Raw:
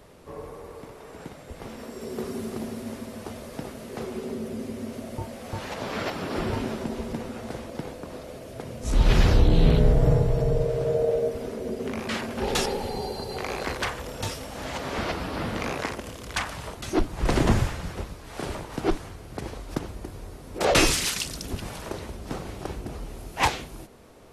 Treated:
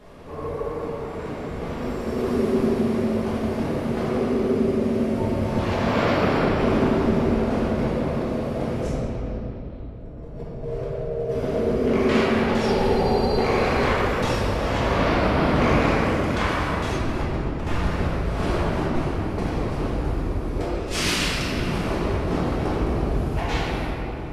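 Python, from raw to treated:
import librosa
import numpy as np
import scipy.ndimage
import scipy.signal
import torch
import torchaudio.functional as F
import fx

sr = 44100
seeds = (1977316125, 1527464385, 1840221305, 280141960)

y = fx.high_shelf(x, sr, hz=5700.0, db=-11.5)
y = fx.over_compress(y, sr, threshold_db=-29.0, ratio=-0.5)
y = fx.room_shoebox(y, sr, seeds[0], volume_m3=200.0, walls='hard', distance_m=1.4)
y = F.gain(torch.from_numpy(y), -3.5).numpy()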